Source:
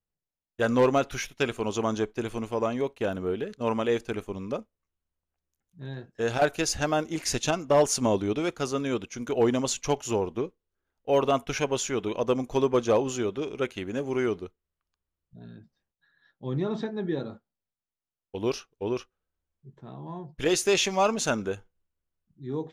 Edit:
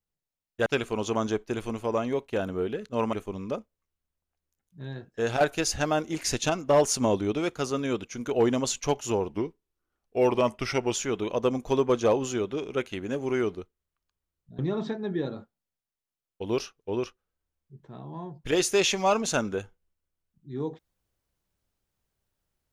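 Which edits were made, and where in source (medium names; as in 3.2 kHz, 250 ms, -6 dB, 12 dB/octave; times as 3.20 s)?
0.66–1.34 s: delete
3.81–4.14 s: delete
10.30–11.79 s: speed 90%
15.43–16.52 s: delete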